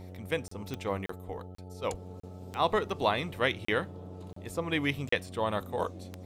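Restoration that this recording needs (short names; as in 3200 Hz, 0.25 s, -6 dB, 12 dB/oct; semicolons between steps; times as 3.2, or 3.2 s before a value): de-click; de-hum 91.6 Hz, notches 8; interpolate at 0.48/1.06/1.55/2.2/3.65/4.33/5.09, 34 ms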